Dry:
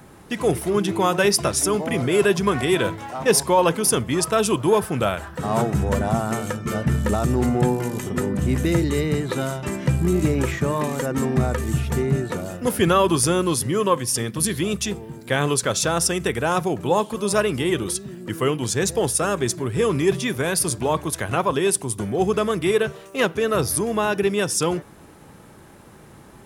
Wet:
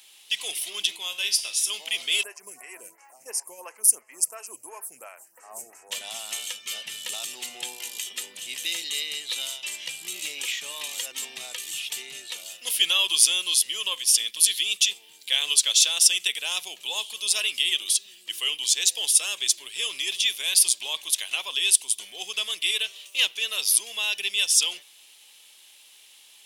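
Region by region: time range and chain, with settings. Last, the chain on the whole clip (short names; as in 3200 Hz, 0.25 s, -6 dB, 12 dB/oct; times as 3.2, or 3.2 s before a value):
0.96–1.7 low shelf 220 Hz +9.5 dB + resonator 77 Hz, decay 0.46 s, mix 70%
2.23–5.91 Butterworth band-stop 3500 Hz, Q 0.6 + photocell phaser 2.9 Hz
whole clip: HPF 1100 Hz 12 dB/oct; resonant high shelf 2100 Hz +13.5 dB, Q 3; gain -10 dB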